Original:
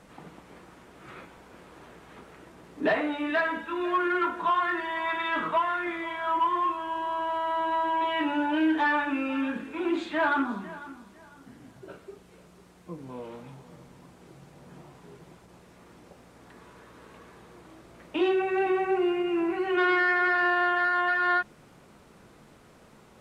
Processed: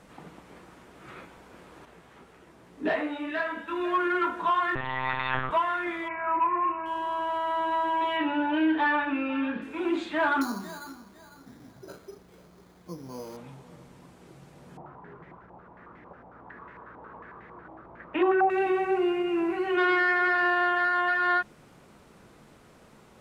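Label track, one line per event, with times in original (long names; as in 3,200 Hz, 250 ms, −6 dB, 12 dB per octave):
1.850000	3.680000	micro pitch shift up and down each way 34 cents
4.750000	5.510000	one-pitch LPC vocoder at 8 kHz 130 Hz
6.080000	6.860000	bad sample-rate conversion rate divided by 8×, down none, up filtered
8.170000	9.620000	low-pass filter 4,200 Hz 24 dB per octave
10.410000	13.370000	bad sample-rate conversion rate divided by 8×, down filtered, up hold
14.770000	18.500000	low-pass on a step sequencer 11 Hz 850–1,900 Hz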